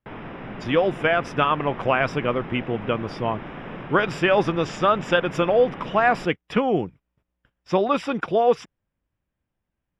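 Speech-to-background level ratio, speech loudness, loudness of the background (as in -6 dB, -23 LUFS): 14.0 dB, -22.5 LUFS, -36.5 LUFS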